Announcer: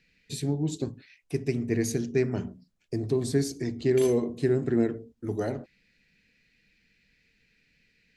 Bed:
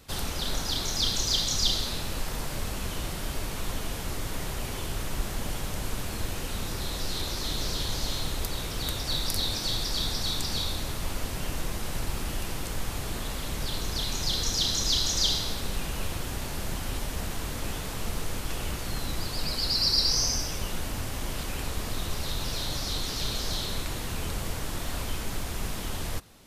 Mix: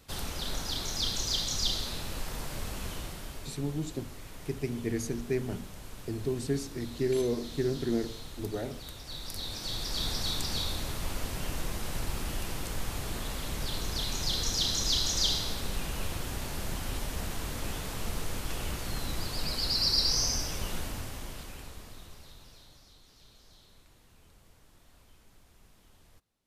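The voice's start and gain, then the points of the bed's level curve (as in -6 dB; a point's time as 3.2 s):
3.15 s, -5.5 dB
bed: 2.89 s -4.5 dB
3.62 s -13 dB
9.05 s -13 dB
10.09 s -2.5 dB
20.77 s -2.5 dB
22.96 s -27.5 dB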